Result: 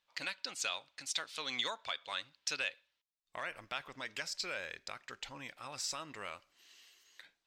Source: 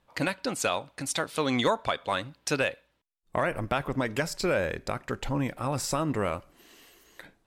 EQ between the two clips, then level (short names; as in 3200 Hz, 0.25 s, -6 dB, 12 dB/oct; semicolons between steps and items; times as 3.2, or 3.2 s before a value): air absorption 190 m; pre-emphasis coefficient 0.97; high shelf 3100 Hz +9.5 dB; +2.5 dB